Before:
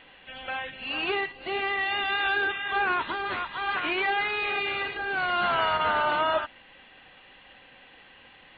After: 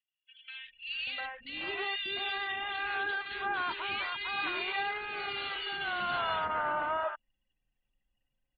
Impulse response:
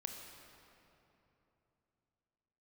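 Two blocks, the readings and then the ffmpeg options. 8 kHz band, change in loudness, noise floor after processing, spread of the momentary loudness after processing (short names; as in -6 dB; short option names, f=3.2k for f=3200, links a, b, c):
n/a, -6.5 dB, -84 dBFS, 7 LU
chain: -filter_complex "[0:a]aemphasis=mode=production:type=75fm,anlmdn=6.31,acrossover=split=420|2100[a][b][c];[a]adelay=590[d];[b]adelay=700[e];[d][e][c]amix=inputs=3:normalize=0,aresample=11025,aresample=44100,volume=-6dB"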